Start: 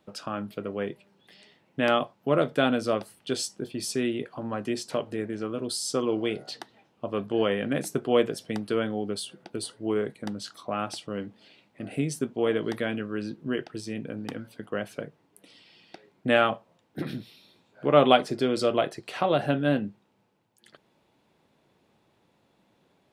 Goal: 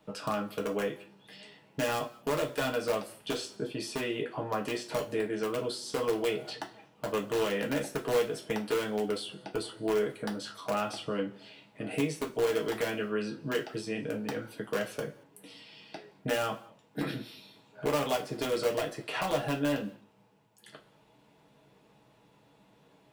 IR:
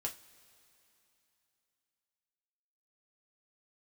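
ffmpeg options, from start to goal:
-filter_complex "[0:a]acrossover=split=340|3300[s0][s1][s2];[s0]acompressor=threshold=0.00708:ratio=4[s3];[s1]acompressor=threshold=0.0251:ratio=4[s4];[s2]acompressor=threshold=0.00316:ratio=4[s5];[s3][s4][s5]amix=inputs=3:normalize=0,asplit=2[s6][s7];[s7]aeval=exprs='(mod(17.8*val(0)+1,2)-1)/17.8':c=same,volume=0.631[s8];[s6][s8]amix=inputs=2:normalize=0[s9];[1:a]atrim=start_sample=2205,afade=t=out:st=0.29:d=0.01,atrim=end_sample=13230[s10];[s9][s10]afir=irnorm=-1:irlink=0"

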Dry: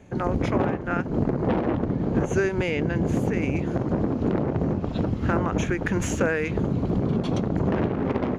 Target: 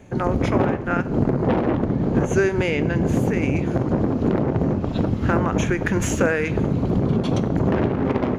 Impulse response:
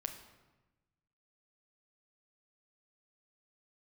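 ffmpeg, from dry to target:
-filter_complex "[0:a]asplit=2[s0][s1];[1:a]atrim=start_sample=2205,highshelf=f=8800:g=11.5[s2];[s1][s2]afir=irnorm=-1:irlink=0,volume=0.631[s3];[s0][s3]amix=inputs=2:normalize=0"

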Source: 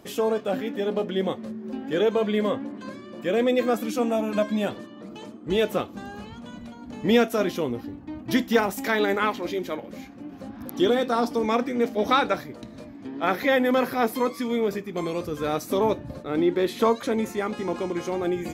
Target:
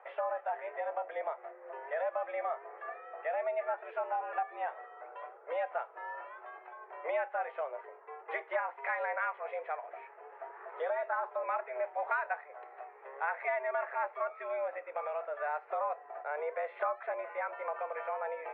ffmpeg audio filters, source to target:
-af "highpass=f=480:t=q:w=0.5412,highpass=f=480:t=q:w=1.307,lowpass=f=2000:t=q:w=0.5176,lowpass=f=2000:t=q:w=0.7071,lowpass=f=2000:t=q:w=1.932,afreqshift=140,acompressor=threshold=0.0178:ratio=2.5"

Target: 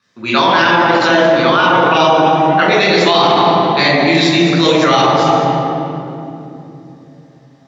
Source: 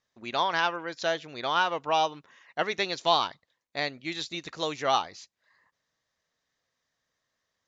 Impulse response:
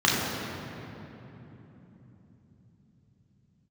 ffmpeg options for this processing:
-filter_complex "[0:a]asettb=1/sr,asplit=3[s0][s1][s2];[s0]atrim=end=0.954[s3];[s1]atrim=start=0.95:end=2.67,asetpts=PTS-STARTPTS,afade=t=in:d=0.004:c=qsin,afade=t=out:st=1.716:d=0.004:c=qsin,highshelf=f=4300:g=-5.5[s4];[s2]atrim=start=2.666[s5];[s3][s4]acrossfade=d=0.004:c1=hsin:c2=qsin[s6];[s6][s5]acrossfade=d=0.004:c1=qsin:c2=hsin[s7];[1:a]atrim=start_sample=2205,asetrate=57330,aresample=44100[s8];[s7][s8]afir=irnorm=-1:irlink=0,alimiter=level_in=2.24:limit=0.891:release=50:level=0:latency=1,volume=0.891"

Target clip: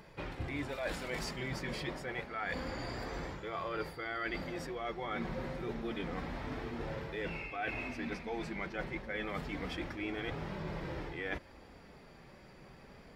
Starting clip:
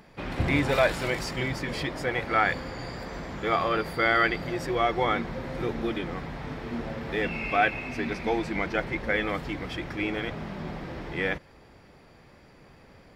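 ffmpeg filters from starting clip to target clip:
-af "areverse,acompressor=threshold=0.0224:ratio=12,areverse,flanger=delay=2:depth=3.4:regen=-49:speed=0.28:shape=sinusoidal,volume=1.26"

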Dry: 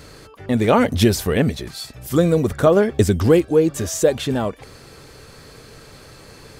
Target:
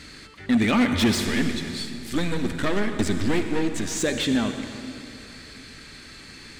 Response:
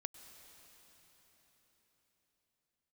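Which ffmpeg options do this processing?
-filter_complex "[0:a]asettb=1/sr,asplit=3[s0][s1][s2];[s0]atrim=end=1.264[s3];[s1]atrim=start=1.26:end=3.97,asetpts=PTS-STARTPTS,afade=t=in:d=0.004:c=qsin,afade=t=out:st=2.706:d=0.004:c=qsin,aeval=exprs='if(lt(val(0),0),0.251*val(0),val(0))':c=same[s4];[s2]atrim=start=3.966[s5];[s3][s4]acrossfade=d=0.004:c1=hsin:c2=qsin[s6];[s6][s5]acrossfade=d=0.004:c1=qsin:c2=hsin,equalizer=f=125:t=o:w=1:g=-7,equalizer=f=250:t=o:w=1:g=8,equalizer=f=500:t=o:w=1:g=-10,equalizer=f=1000:t=o:w=1:g=-4,equalizer=f=2000:t=o:w=1:g=10,equalizer=f=4000:t=o:w=1:g=10,equalizer=f=8000:t=o:w=1:g=11[s7];[1:a]atrim=start_sample=2205,asetrate=83790,aresample=44100[s8];[s7][s8]afir=irnorm=-1:irlink=0,asoftclip=type=hard:threshold=0.0841,highshelf=f=3100:g=-12,volume=2.24"

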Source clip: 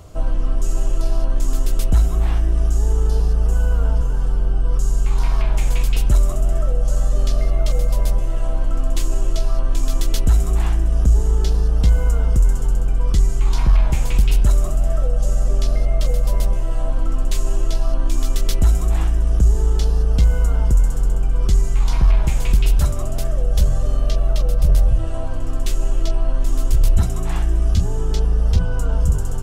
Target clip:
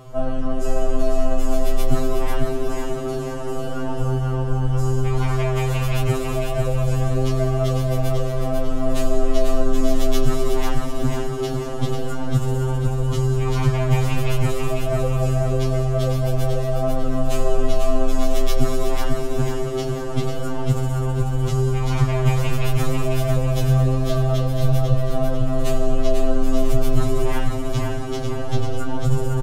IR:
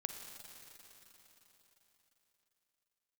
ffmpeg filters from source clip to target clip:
-filter_complex "[0:a]aecho=1:1:495|990|1485|1980|2475:0.596|0.256|0.11|0.0474|0.0204,asplit=2[s0][s1];[1:a]atrim=start_sample=2205,asetrate=32634,aresample=44100,lowpass=3600[s2];[s1][s2]afir=irnorm=-1:irlink=0,volume=1.06[s3];[s0][s3]amix=inputs=2:normalize=0,afftfilt=real='re*2.45*eq(mod(b,6),0)':imag='im*2.45*eq(mod(b,6),0)':win_size=2048:overlap=0.75"

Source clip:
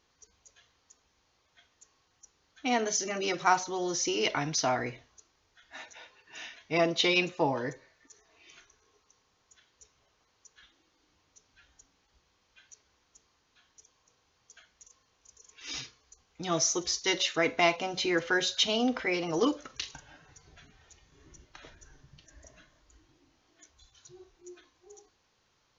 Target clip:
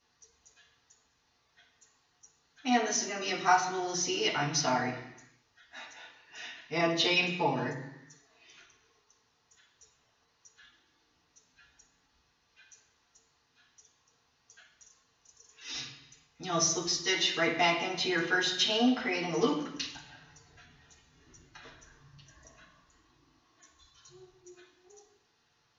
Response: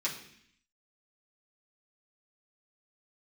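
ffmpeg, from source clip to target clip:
-filter_complex "[0:a]asettb=1/sr,asplit=3[s0][s1][s2];[s0]atrim=end=21.644[s3];[s1]atrim=start=21.64:end=24.17,asetpts=PTS-STARTPTS,afade=t=in:d=0.004:c=qsin,afade=t=out:st=2.526:d=0.004:c=qsin,equalizer=f=1100:w=7.6:g=11.5[s4];[s2]atrim=start=24.166[s5];[s3][s4]acrossfade=d=0.004:c1=hsin:c2=qsin[s6];[s6][s5]acrossfade=d=0.004:c1=qsin:c2=hsin[s7];[1:a]atrim=start_sample=2205,afade=t=out:st=0.45:d=0.01,atrim=end_sample=20286,asetrate=33516,aresample=44100[s8];[s7][s8]afir=irnorm=-1:irlink=0,volume=0.447"

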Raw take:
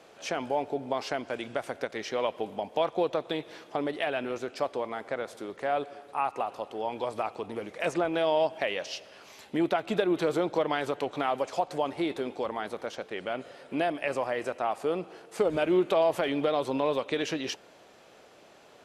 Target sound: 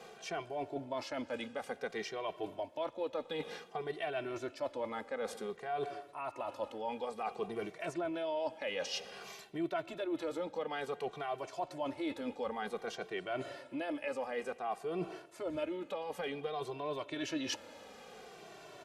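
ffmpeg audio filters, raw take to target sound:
-filter_complex "[0:a]areverse,acompressor=threshold=0.0126:ratio=6,areverse,asplit=2[s0][s1];[s1]adelay=2.1,afreqshift=-0.55[s2];[s0][s2]amix=inputs=2:normalize=1,volume=1.88"

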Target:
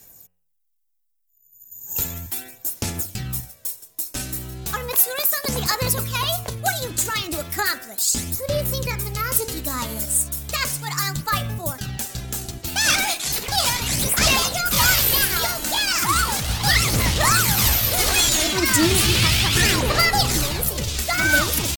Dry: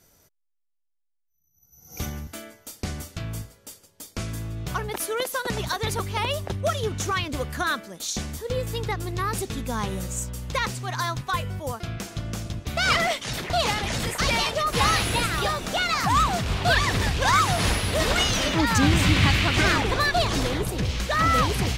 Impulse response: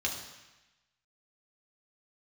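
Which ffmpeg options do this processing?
-af "aphaser=in_gain=1:out_gain=1:delay=3.8:decay=0.42:speed=0.35:type=sinusoidal,aemphasis=mode=production:type=75fm,asetrate=50951,aresample=44100,atempo=0.865537,bandreject=f=90.43:t=h:w=4,bandreject=f=180.86:t=h:w=4,bandreject=f=271.29:t=h:w=4,bandreject=f=361.72:t=h:w=4,bandreject=f=452.15:t=h:w=4,bandreject=f=542.58:t=h:w=4,bandreject=f=633.01:t=h:w=4,bandreject=f=723.44:t=h:w=4,bandreject=f=813.87:t=h:w=4,bandreject=f=904.3:t=h:w=4,bandreject=f=994.73:t=h:w=4,bandreject=f=1085.16:t=h:w=4,bandreject=f=1175.59:t=h:w=4,bandreject=f=1266.02:t=h:w=4,bandreject=f=1356.45:t=h:w=4,bandreject=f=1446.88:t=h:w=4,bandreject=f=1537.31:t=h:w=4,bandreject=f=1627.74:t=h:w=4,bandreject=f=1718.17:t=h:w=4,bandreject=f=1808.6:t=h:w=4,bandreject=f=1899.03:t=h:w=4,bandreject=f=1989.46:t=h:w=4,bandreject=f=2079.89:t=h:w=4,bandreject=f=2170.32:t=h:w=4,bandreject=f=2260.75:t=h:w=4,bandreject=f=2351.18:t=h:w=4,bandreject=f=2441.61:t=h:w=4,bandreject=f=2532.04:t=h:w=4,bandreject=f=2622.47:t=h:w=4,bandreject=f=2712.9:t=h:w=4,bandreject=f=2803.33:t=h:w=4,bandreject=f=2893.76:t=h:w=4,bandreject=f=2984.19:t=h:w=4,bandreject=f=3074.62:t=h:w=4"

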